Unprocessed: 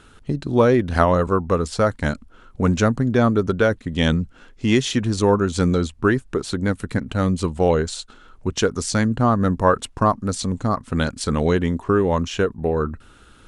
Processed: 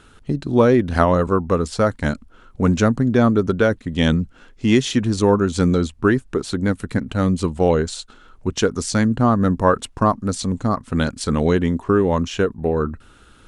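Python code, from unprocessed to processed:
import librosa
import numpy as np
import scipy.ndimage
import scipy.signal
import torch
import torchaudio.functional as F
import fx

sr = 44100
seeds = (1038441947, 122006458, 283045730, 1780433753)

y = fx.dynamic_eq(x, sr, hz=250.0, q=1.1, threshold_db=-26.0, ratio=4.0, max_db=3)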